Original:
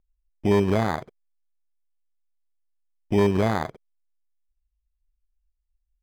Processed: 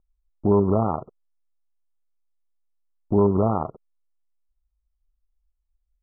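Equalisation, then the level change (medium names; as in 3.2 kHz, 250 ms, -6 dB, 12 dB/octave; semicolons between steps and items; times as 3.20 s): brick-wall FIR low-pass 1.4 kHz; +1.5 dB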